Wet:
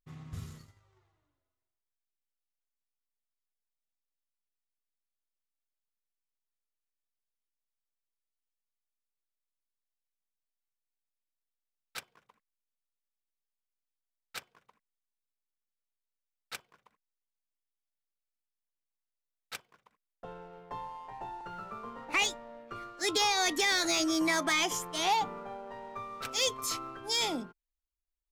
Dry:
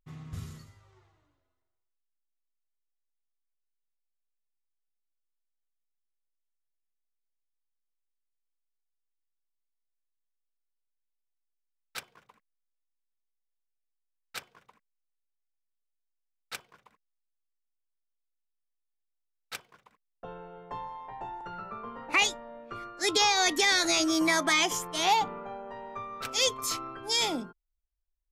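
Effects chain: sample leveller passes 1; gain -6 dB

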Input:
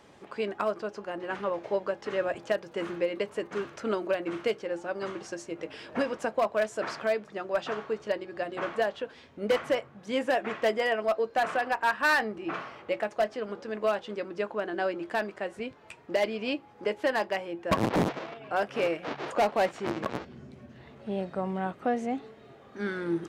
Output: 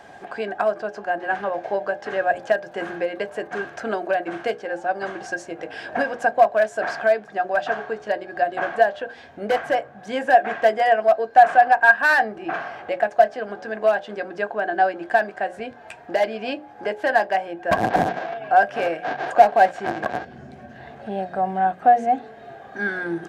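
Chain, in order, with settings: notches 60/120/180/240/300/360/420/480/540/600 Hz; in parallel at -0.5 dB: compressor, threshold -42 dBFS, peak gain reduction 19 dB; on the sum: small resonant body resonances 730/1600 Hz, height 17 dB, ringing for 35 ms

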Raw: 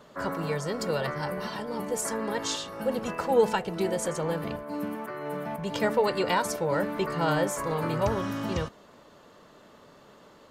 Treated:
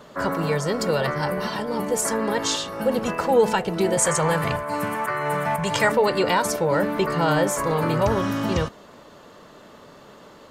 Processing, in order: 3.97–5.92 ten-band EQ 125 Hz +9 dB, 250 Hz -9 dB, 1000 Hz +6 dB, 2000 Hz +7 dB, 8000 Hz +11 dB; in parallel at +2 dB: limiter -19.5 dBFS, peak gain reduction 10.5 dB

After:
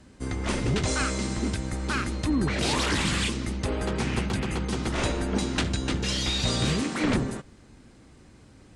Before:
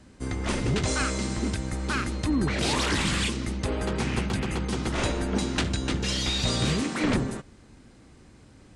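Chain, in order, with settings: Opus 64 kbps 48000 Hz

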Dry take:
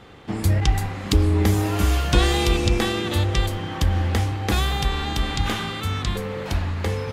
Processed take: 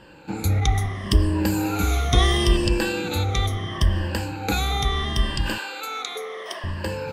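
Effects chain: moving spectral ripple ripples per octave 1.3, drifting -0.73 Hz, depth 16 dB; 5.58–6.64 HPF 410 Hz 24 dB/oct; gain -3.5 dB

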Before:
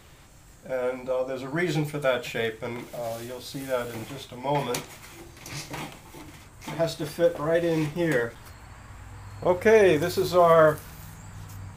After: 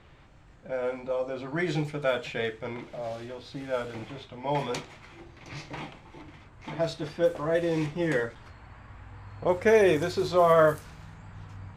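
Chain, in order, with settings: low-pass opened by the level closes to 2900 Hz, open at -15.5 dBFS; gain -2.5 dB

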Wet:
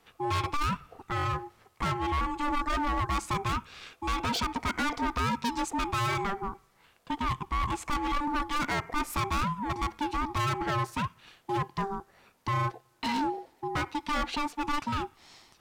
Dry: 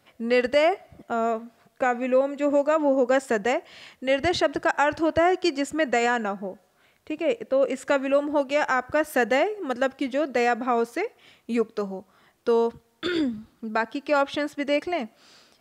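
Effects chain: hard clip -25.5 dBFS, distortion -6 dB; ring modulator 590 Hz; gain +2 dB

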